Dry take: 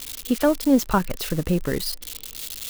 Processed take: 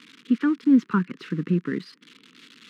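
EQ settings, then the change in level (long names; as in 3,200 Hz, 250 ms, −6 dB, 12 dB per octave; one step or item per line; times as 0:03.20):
Butterworth high-pass 170 Hz 36 dB per octave
Butterworth band-reject 670 Hz, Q 0.65
low-pass filter 1,600 Hz 12 dB per octave
+2.5 dB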